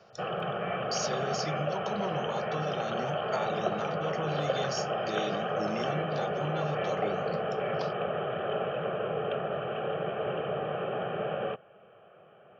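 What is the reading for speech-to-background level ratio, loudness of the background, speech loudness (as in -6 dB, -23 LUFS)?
-5.0 dB, -32.5 LUFS, -37.5 LUFS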